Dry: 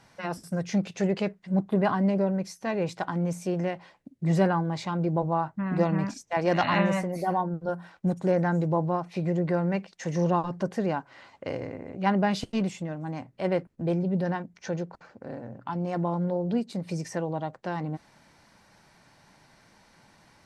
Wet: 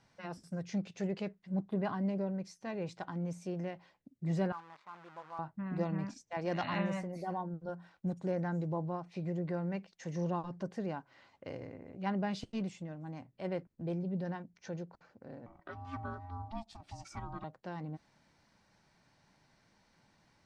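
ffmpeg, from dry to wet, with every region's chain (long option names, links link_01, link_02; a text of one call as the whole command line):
ffmpeg -i in.wav -filter_complex "[0:a]asettb=1/sr,asplit=3[link_01][link_02][link_03];[link_01]atrim=end=4.524[link_04];[link_02]atrim=start=4.52:end=5.39,asetpts=PTS-STARTPTS,afade=type=in:duration=0.004:curve=qsin,afade=type=out:start_time=0.866:duration=0.004:curve=qsin,acrusher=bits=6:dc=4:mix=0:aa=0.000001,bandpass=frequency=1200:width_type=q:width=2.6[link_05];[link_03]atrim=start=5.386[link_06];[link_04][link_05]acrossfade=duration=0.004:curve1=hsin:curve2=qsin[link_07];[link_07][link_06]acrossfade=duration=0.004:curve1=qsin:curve2=hsin,asettb=1/sr,asplit=3[link_08][link_09][link_10];[link_08]atrim=end=15.464[link_11];[link_09]atrim=start=15.46:end=17.44,asetpts=PTS-STARTPTS,afade=type=in:duration=0.004:curve=qsin,afade=type=out:start_time=1.976:duration=0.004:curve=qsin,equalizer=frequency=130:width=0.98:gain=-5.5,aecho=1:1:2.7:1,atrim=end_sample=87318,aeval=exprs='val(0)*sin(2*PI*450*n/s)':channel_layout=same[link_12];[link_10]atrim=start=17.436[link_13];[link_11][link_12]acrossfade=duration=0.004:curve1=hsin:curve2=qsin[link_14];[link_14][link_13]acrossfade=duration=0.004:curve1=qsin:curve2=hsin,lowpass=6900,equalizer=frequency=1100:width=0.31:gain=-3.5,volume=-8.5dB" out.wav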